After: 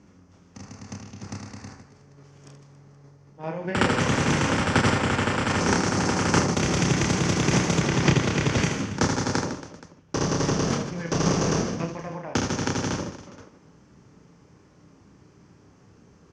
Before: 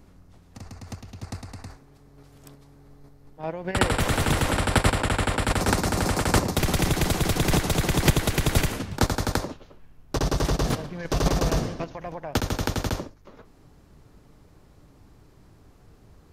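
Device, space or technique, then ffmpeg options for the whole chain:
car door speaker: -filter_complex "[0:a]asettb=1/sr,asplit=3[a][b][c];[a]atrim=end=7.794[d];[b]atrim=start=7.79:end=8.6,asetpts=PTS-STARTPTS,afade=t=in:d=0.004:c=qsin,afade=t=out:st=0.806:d=0.004:c=qsin,acrossover=split=6000[e][f];[f]acompressor=threshold=-41dB:ratio=4:attack=1:release=60[g];[e][g]amix=inputs=2:normalize=0[h];[c]atrim=start=8.596[i];[d][h]acrossfade=d=0.004:c1=hsin:c2=qsin[j];[j][i]acrossfade=d=0.004:c1=qsin:c2=hsin,highpass=110,equalizer=f=190:t=q:w=4:g=4,equalizer=f=690:t=q:w=4:g=-6,equalizer=f=3.9k:t=q:w=4:g=-8,equalizer=f=6.1k:t=q:w=4:g=7,lowpass=f=6.6k:w=0.5412,lowpass=f=6.6k:w=1.3066,aecho=1:1:30|78|154.8|277.7|474.3:0.631|0.398|0.251|0.158|0.1"

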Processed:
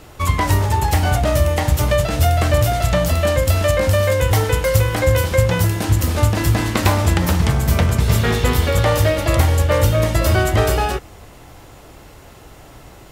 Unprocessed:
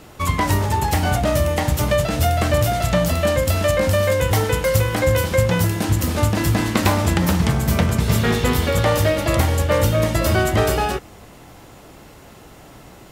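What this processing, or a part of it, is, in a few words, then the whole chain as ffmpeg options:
low shelf boost with a cut just above: -af "lowshelf=f=110:g=6,equalizer=f=200:t=o:w=0.97:g=-5.5,volume=1dB"

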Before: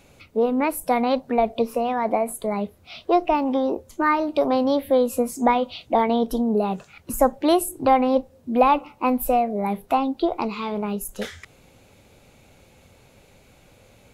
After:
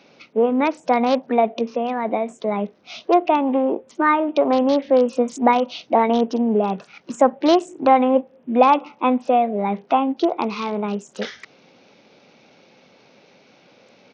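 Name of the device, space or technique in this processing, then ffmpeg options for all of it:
Bluetooth headset: -filter_complex "[0:a]asettb=1/sr,asplit=3[a][b][c];[a]atrim=end=1.594[d];[b]atrim=start=1.59:end=2.44,asetpts=PTS-STARTPTS,afade=t=in:d=0.004:c=qsin,afade=t=out:st=0.846:d=0.004:c=qsin,adynamicequalizer=threshold=0.02:dfrequency=930:dqfactor=0.72:tfrequency=930:tqfactor=0.72:attack=5:release=100:ratio=0.375:range=2.5:mode=cutabove:tftype=bell[e];[c]atrim=start=2.436[f];[d][e]acrossfade=d=0.004:c1=hsin:c2=qsin[g];[g][f]acrossfade=d=0.004:c1=qsin:c2=hsin,highpass=f=180:w=0.5412,highpass=f=180:w=1.3066,aresample=16000,aresample=44100,volume=3dB" -ar 48000 -c:a sbc -b:a 64k

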